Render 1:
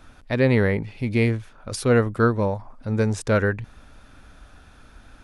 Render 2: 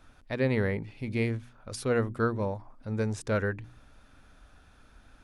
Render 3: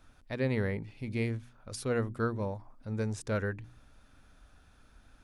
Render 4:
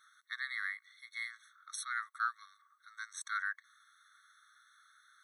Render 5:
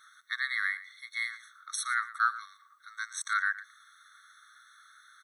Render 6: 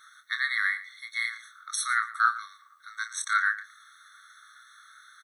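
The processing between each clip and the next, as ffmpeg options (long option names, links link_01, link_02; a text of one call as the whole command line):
ffmpeg -i in.wav -af "bandreject=frequency=60.26:width_type=h:width=4,bandreject=frequency=120.52:width_type=h:width=4,bandreject=frequency=180.78:width_type=h:width=4,bandreject=frequency=241.04:width_type=h:width=4,bandreject=frequency=301.3:width_type=h:width=4,bandreject=frequency=361.56:width_type=h:width=4,volume=-8dB" out.wav
ffmpeg -i in.wav -af "bass=frequency=250:gain=2,treble=frequency=4000:gain=3,volume=-4.5dB" out.wav
ffmpeg -i in.wav -af "afftfilt=real='re*eq(mod(floor(b*sr/1024/1100),2),1)':imag='im*eq(mod(floor(b*sr/1024/1100),2),1)':win_size=1024:overlap=0.75,volume=4dB" out.wav
ffmpeg -i in.wav -af "aecho=1:1:115:0.158,volume=7.5dB" out.wav
ffmpeg -i in.wav -filter_complex "[0:a]asplit=2[link_01][link_02];[link_02]adelay=27,volume=-8.5dB[link_03];[link_01][link_03]amix=inputs=2:normalize=0,volume=3.5dB" out.wav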